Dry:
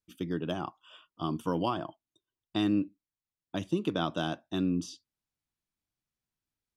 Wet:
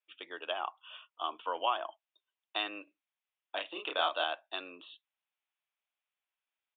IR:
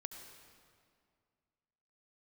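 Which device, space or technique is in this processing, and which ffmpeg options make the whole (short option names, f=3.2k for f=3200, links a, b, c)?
musical greeting card: -filter_complex "[0:a]aresample=8000,aresample=44100,highpass=f=600:w=0.5412,highpass=f=600:w=1.3066,equalizer=f=2.6k:t=o:w=0.54:g=5,asettb=1/sr,asplit=3[a][b][c];[a]atrim=end=2.844[d];[b]atrim=start=2.84:end=4.24,asetpts=PTS-STARTPTS,afade=t=in:d=0.004:c=qsin,afade=t=out:st=1.396:d=0.004:c=qsin,asplit=2[e][f];[f]adelay=31,volume=-3dB[g];[e][g]amix=inputs=2:normalize=0,atrim=end_sample=61740[h];[c]atrim=start=4.236[i];[d][h]acrossfade=d=0.004:c1=hsin:c2=qsin[j];[j][i]acrossfade=d=0.004:c1=qsin:c2=hsin,volume=2dB"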